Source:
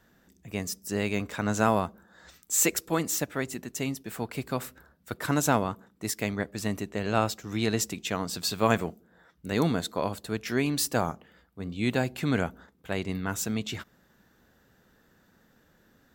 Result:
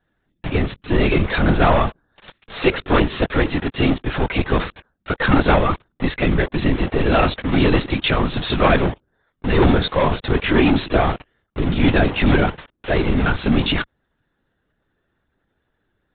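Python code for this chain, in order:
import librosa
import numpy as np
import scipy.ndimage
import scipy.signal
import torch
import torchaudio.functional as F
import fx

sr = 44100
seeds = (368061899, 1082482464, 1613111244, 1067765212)

p1 = fx.leveller(x, sr, passes=3)
p2 = fx.fuzz(p1, sr, gain_db=45.0, gate_db=-49.0)
p3 = p1 + F.gain(torch.from_numpy(p2), -6.0).numpy()
p4 = fx.lpc_vocoder(p3, sr, seeds[0], excitation='whisper', order=16)
y = F.gain(torch.from_numpy(p4), -1.5).numpy()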